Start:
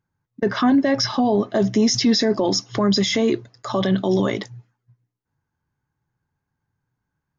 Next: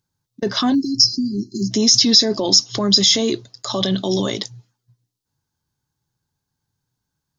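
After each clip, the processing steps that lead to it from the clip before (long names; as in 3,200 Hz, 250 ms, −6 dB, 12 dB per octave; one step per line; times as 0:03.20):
high shelf with overshoot 2,900 Hz +11 dB, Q 1.5
time-frequency box erased 0:00.75–0:01.71, 400–4,100 Hz
boost into a limiter 0 dB
level −1 dB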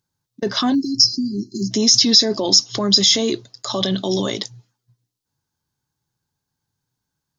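low-shelf EQ 130 Hz −4.5 dB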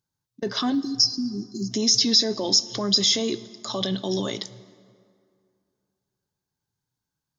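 dense smooth reverb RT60 2.4 s, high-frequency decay 0.6×, DRR 16 dB
level −6 dB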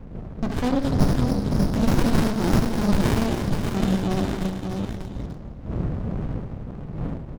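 wind on the microphone 220 Hz −34 dBFS
multi-tap delay 74/280/514/595/887 ms −5.5/−9.5/−15.5/−6/−17 dB
windowed peak hold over 65 samples
level +3.5 dB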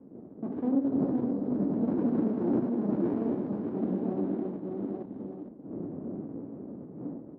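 delay that plays each chunk backwards 457 ms, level −4.5 dB
four-pole ladder band-pass 340 Hz, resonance 45%
flanger 1.8 Hz, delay 2.6 ms, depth 9.3 ms, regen −69%
level +8.5 dB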